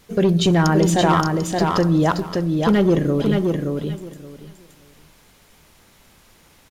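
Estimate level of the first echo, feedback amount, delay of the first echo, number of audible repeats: -4.0 dB, 18%, 573 ms, 3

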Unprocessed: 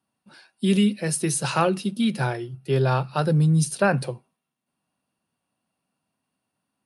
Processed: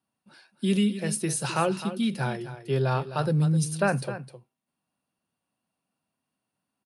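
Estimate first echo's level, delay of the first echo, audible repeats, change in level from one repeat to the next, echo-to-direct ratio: -12.5 dB, 258 ms, 1, no regular repeats, -12.5 dB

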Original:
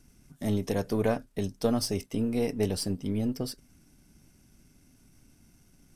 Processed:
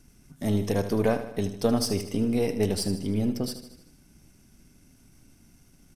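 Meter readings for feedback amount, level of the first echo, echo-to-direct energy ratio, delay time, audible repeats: 55%, -11.0 dB, -9.5 dB, 77 ms, 5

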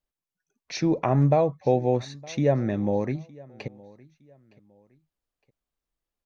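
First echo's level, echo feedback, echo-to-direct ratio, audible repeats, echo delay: -23.5 dB, 32%, -23.0 dB, 2, 913 ms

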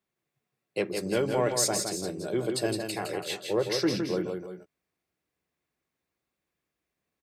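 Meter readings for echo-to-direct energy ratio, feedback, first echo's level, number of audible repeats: -4.5 dB, no regular repeats, -5.5 dB, 2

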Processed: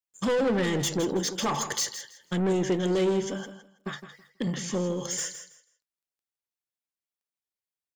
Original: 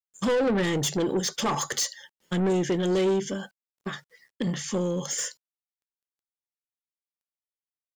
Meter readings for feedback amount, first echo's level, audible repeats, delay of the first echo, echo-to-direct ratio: 21%, -11.0 dB, 2, 162 ms, -11.0 dB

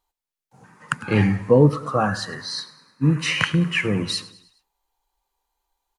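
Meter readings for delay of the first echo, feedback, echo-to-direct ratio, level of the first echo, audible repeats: 104 ms, 49%, -17.5 dB, -18.5 dB, 3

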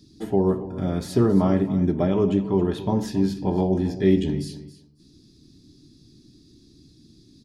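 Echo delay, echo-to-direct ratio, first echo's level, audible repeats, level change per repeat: 273 ms, -15.0 dB, -15.0 dB, 2, -15.0 dB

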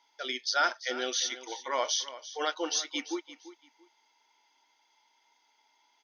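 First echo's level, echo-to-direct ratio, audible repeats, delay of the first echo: -15.0 dB, -15.0 dB, 2, 341 ms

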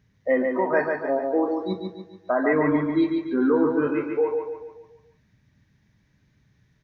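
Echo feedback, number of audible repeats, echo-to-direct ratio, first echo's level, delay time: 46%, 5, -3.5 dB, -4.5 dB, 143 ms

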